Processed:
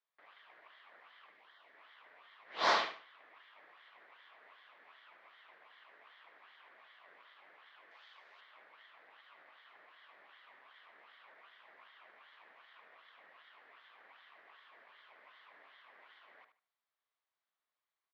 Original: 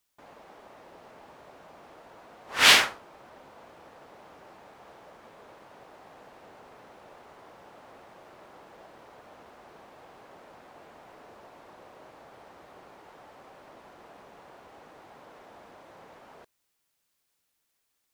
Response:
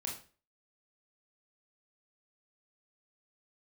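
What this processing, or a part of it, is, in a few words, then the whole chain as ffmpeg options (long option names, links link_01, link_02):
voice changer toy: -filter_complex "[0:a]asplit=3[link_01][link_02][link_03];[link_01]afade=type=out:start_time=1.29:duration=0.02[link_04];[link_02]highpass=580,afade=type=in:start_time=1.29:duration=0.02,afade=type=out:start_time=1.73:duration=0.02[link_05];[link_03]afade=type=in:start_time=1.73:duration=0.02[link_06];[link_04][link_05][link_06]amix=inputs=3:normalize=0,aeval=exprs='val(0)*sin(2*PI*1800*n/s+1800*0.45/2.6*sin(2*PI*2.6*n/s))':channel_layout=same,highpass=530,equalizer=frequency=650:width_type=q:width=4:gain=3,equalizer=frequency=1100:width_type=q:width=4:gain=7,equalizer=frequency=1900:width_type=q:width=4:gain=3,equalizer=frequency=2700:width_type=q:width=4:gain=-5,lowpass=frequency=3800:width=0.5412,lowpass=frequency=3800:width=1.3066,aecho=1:1:74|148|222:0.335|0.077|0.0177,asettb=1/sr,asplit=3[link_07][link_08][link_09];[link_07]atrim=end=7.914[link_10];[link_08]atrim=start=7.91:end=8.41,asetpts=PTS-STARTPTS,afade=type=in:duration=0.004:curve=qsin,afade=type=out:start_time=0.496:duration=0.004:curve=qsin,bass=frequency=250:gain=-14,treble=frequency=4000:gain=14[link_11];[link_09]atrim=start=8.406[link_12];[link_10][link_11]acrossfade=duration=0.004:curve1=hsin:curve2=qsin[link_13];[link_13][link_12]acrossfade=duration=0.004:curve1=qsin:curve2=hsin,volume=-8dB"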